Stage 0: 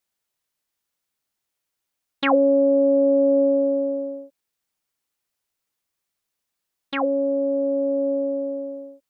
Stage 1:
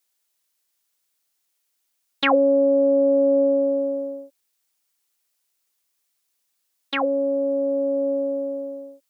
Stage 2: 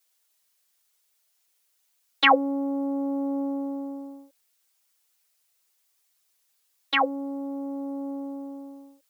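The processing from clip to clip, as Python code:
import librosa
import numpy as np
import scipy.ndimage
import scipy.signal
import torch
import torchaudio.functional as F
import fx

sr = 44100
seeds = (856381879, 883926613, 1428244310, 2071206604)

y1 = scipy.signal.sosfilt(scipy.signal.butter(2, 230.0, 'highpass', fs=sr, output='sos'), x)
y1 = fx.high_shelf(y1, sr, hz=3000.0, db=9.0)
y2 = scipy.signal.sosfilt(scipy.signal.butter(2, 380.0, 'highpass', fs=sr, output='sos'), y1)
y2 = y2 + 0.94 * np.pad(y2, (int(6.3 * sr / 1000.0), 0))[:len(y2)]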